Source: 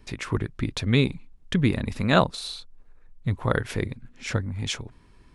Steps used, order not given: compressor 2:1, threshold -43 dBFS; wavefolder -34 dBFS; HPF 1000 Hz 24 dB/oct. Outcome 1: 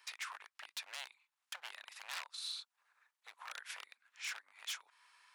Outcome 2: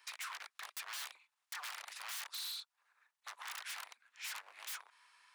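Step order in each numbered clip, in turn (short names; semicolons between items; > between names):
compressor > wavefolder > HPF; wavefolder > compressor > HPF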